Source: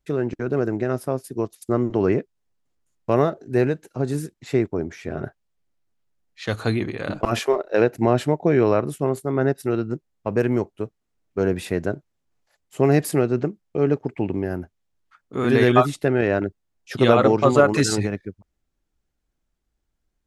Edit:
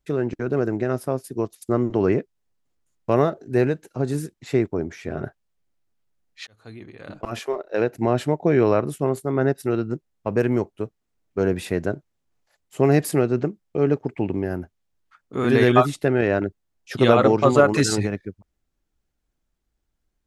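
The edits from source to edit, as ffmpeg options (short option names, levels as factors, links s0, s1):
-filter_complex "[0:a]asplit=2[s0][s1];[s0]atrim=end=6.47,asetpts=PTS-STARTPTS,afade=t=out:st=6.466:d=0.004:c=hsin[s2];[s1]atrim=start=6.47,asetpts=PTS-STARTPTS,afade=t=in:d=2.11[s3];[s2][s3]concat=n=2:v=0:a=1"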